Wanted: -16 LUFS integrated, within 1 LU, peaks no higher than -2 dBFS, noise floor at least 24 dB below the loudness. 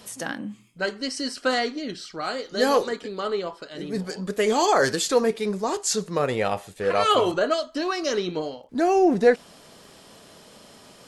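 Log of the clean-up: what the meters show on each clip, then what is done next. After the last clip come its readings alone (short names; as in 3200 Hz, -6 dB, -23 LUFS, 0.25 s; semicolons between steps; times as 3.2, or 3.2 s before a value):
ticks 26/s; loudness -24.5 LUFS; peak -5.5 dBFS; loudness target -16.0 LUFS
-> de-click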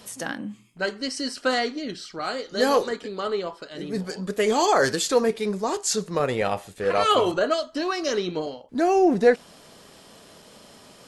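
ticks 0/s; loudness -24.5 LUFS; peak -5.5 dBFS; loudness target -16.0 LUFS
-> gain +8.5 dB; limiter -2 dBFS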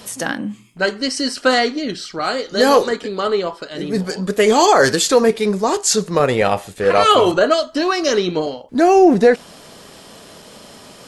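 loudness -16.5 LUFS; peak -2.0 dBFS; noise floor -42 dBFS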